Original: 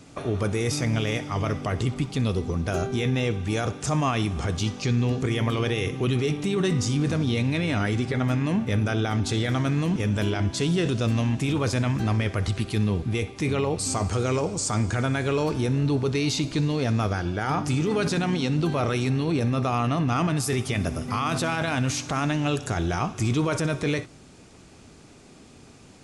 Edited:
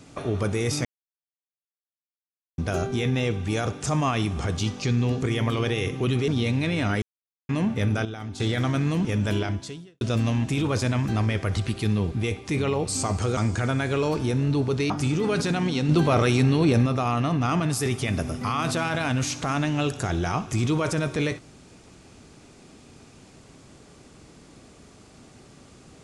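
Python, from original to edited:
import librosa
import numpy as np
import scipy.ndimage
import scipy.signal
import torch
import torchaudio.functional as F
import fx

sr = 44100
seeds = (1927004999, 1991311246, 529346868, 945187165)

y = fx.edit(x, sr, fx.silence(start_s=0.85, length_s=1.73),
    fx.cut(start_s=6.28, length_s=0.91),
    fx.silence(start_s=7.93, length_s=0.47),
    fx.clip_gain(start_s=8.96, length_s=0.35, db=-10.0),
    fx.fade_out_span(start_s=10.33, length_s=0.59, curve='qua'),
    fx.cut(start_s=14.28, length_s=0.44),
    fx.cut(start_s=16.25, length_s=1.32),
    fx.clip_gain(start_s=18.56, length_s=0.97, db=4.5), tone=tone)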